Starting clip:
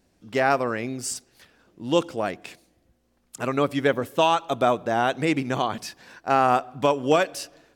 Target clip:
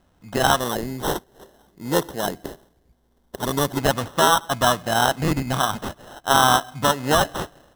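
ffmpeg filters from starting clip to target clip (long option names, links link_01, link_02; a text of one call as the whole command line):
ffmpeg -i in.wav -filter_complex "[0:a]equalizer=frequency=400:width_type=o:width=1.5:gain=-13,acrusher=samples=19:mix=1:aa=0.000001,asettb=1/sr,asplit=3[link_01][link_02][link_03];[link_01]atrim=end=0.594[link_04];[link_02]atrim=start=0.59:end=3.78,asetpts=PTS-STARTPTS,afade=type=in:duration=0.004:curve=qsin,afade=type=out:start_time=3.186:duration=0.004:curve=qsin,equalizer=frequency=100:width_type=o:width=0.33:gain=-11,equalizer=frequency=400:width_type=o:width=0.33:gain=7,equalizer=frequency=1250:width_type=o:width=0.33:gain=-8,equalizer=frequency=2500:width_type=o:width=0.33:gain=-9,equalizer=frequency=12500:width_type=o:width=0.33:gain=6[link_05];[link_03]atrim=start=3.776[link_06];[link_04][link_05]acrossfade=duration=0.004:curve1=hsin:curve2=qsin[link_07];[link_07][link_06]acrossfade=duration=0.004:curve1=qsin:curve2=hsin,volume=7.5dB" out.wav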